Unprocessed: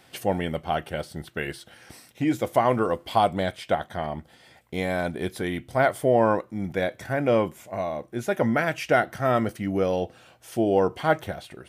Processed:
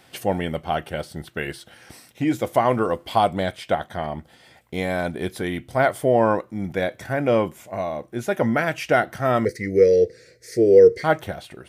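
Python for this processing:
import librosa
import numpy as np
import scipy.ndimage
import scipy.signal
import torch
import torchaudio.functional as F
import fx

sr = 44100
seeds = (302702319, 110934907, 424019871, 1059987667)

y = fx.curve_eq(x, sr, hz=(140.0, 270.0, 460.0, 850.0, 1300.0, 2000.0, 3000.0, 4500.0, 14000.0), db=(0, -6, 13, -30, -15, 11, -18, 9, -6), at=(9.45, 11.04))
y = F.gain(torch.from_numpy(y), 2.0).numpy()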